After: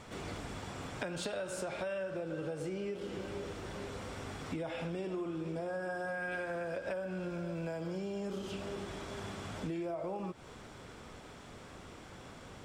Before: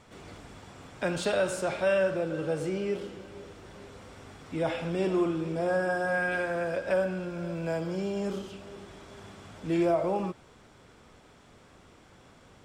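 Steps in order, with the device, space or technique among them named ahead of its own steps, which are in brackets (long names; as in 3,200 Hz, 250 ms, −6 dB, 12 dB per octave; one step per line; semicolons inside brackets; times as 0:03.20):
serial compression, peaks first (downward compressor, threshold −38 dBFS, peak gain reduction 15 dB; downward compressor 2.5 to 1, threshold −41 dBFS, peak gain reduction 4.5 dB)
level +5 dB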